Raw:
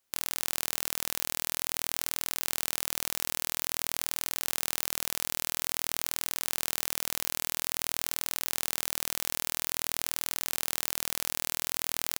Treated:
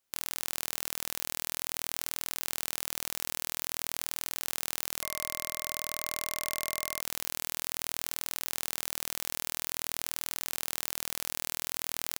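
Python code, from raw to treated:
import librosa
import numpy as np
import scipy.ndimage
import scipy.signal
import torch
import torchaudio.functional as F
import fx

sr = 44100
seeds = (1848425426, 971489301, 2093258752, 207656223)

y = fx.small_body(x, sr, hz=(610.0, 1100.0, 2100.0), ring_ms=45, db=10, at=(5.01, 7.01))
y = y * 10.0 ** (-3.0 / 20.0)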